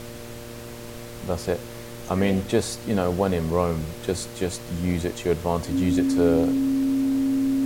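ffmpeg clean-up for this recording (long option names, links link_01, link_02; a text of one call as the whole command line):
ffmpeg -i in.wav -af "bandreject=frequency=117.9:width_type=h:width=4,bandreject=frequency=235.8:width_type=h:width=4,bandreject=frequency=353.7:width_type=h:width=4,bandreject=frequency=471.6:width_type=h:width=4,bandreject=frequency=589.5:width_type=h:width=4,bandreject=frequency=270:width=30,afftdn=noise_reduction=30:noise_floor=-38" out.wav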